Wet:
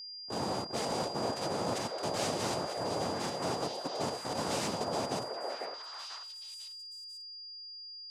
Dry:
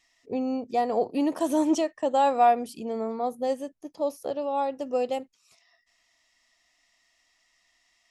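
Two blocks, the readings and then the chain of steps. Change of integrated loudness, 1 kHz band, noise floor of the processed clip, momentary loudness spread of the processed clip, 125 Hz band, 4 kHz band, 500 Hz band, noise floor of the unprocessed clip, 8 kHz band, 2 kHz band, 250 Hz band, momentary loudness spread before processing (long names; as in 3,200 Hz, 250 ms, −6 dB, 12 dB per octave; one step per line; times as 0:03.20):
−9.0 dB, −9.5 dB, −47 dBFS, 10 LU, can't be measured, +8.5 dB, −8.0 dB, −70 dBFS, +4.5 dB, 0.0 dB, −10.5 dB, 10 LU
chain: noise gate −49 dBFS, range −34 dB
hum removal 182.9 Hz, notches 14
speech leveller within 4 dB 2 s
brickwall limiter −23 dBFS, peak gain reduction 12.5 dB
tube saturation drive 35 dB, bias 0.65
cochlear-implant simulation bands 2
steady tone 4,800 Hz −45 dBFS
on a send: echo through a band-pass that steps 496 ms, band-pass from 580 Hz, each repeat 1.4 octaves, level −0.5 dB
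on the sum: level +2.5 dB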